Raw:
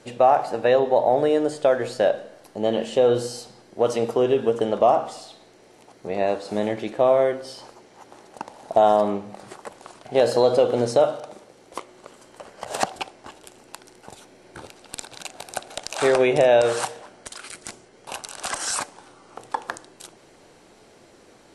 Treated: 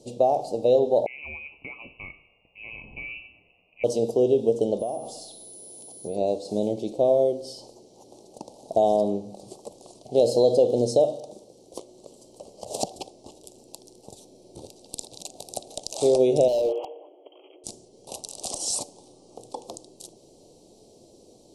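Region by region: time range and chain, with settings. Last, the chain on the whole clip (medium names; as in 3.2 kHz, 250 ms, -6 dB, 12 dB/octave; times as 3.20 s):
1.06–3.84 s: bass shelf 210 Hz +6 dB + frequency inversion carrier 2.8 kHz
4.78–6.15 s: compression 2.5:1, threshold -26 dBFS + whistle 10 kHz -47 dBFS + tape noise reduction on one side only encoder only
16.48–17.64 s: brick-wall FIR band-pass 280–3300 Hz + hard clipper -18.5 dBFS
whole clip: Chebyshev band-stop 570–4600 Hz, order 2; dynamic bell 1.2 kHz, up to -4 dB, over -38 dBFS, Q 1.7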